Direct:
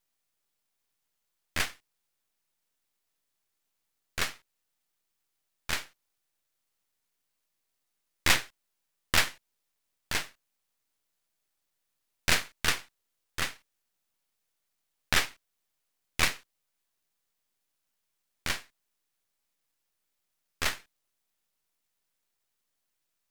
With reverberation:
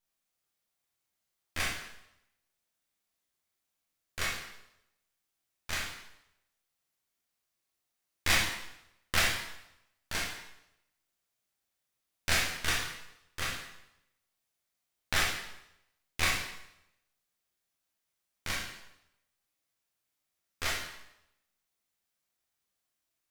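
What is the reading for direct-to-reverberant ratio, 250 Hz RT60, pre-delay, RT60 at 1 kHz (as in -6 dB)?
-3.5 dB, 0.80 s, 7 ms, 0.85 s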